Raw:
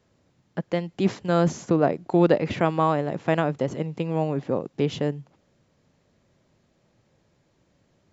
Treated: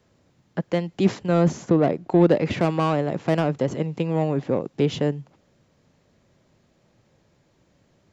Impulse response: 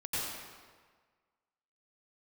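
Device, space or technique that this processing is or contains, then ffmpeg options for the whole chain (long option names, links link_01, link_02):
one-band saturation: -filter_complex "[0:a]acrossover=split=490|4500[link_01][link_02][link_03];[link_02]asoftclip=type=tanh:threshold=-24dB[link_04];[link_01][link_04][link_03]amix=inputs=3:normalize=0,asettb=1/sr,asplit=3[link_05][link_06][link_07];[link_05]atrim=end=1.234[link_08];[link_06]atrim=start=1.23:end=2.35,asetpts=PTS-STARTPTS,afade=type=in:duration=0.004:curve=qsin,afade=type=out:start_time=1.116:duration=0.004:curve=qsin,highshelf=frequency=4000:gain=-6[link_09];[link_07]atrim=start=2.346[link_10];[link_08][link_09]acrossfade=duration=0.004:curve1=hsin:curve2=qsin[link_11];[link_11][link_10]acrossfade=duration=0.004:curve1=qsin:curve2=hsin,volume=3dB"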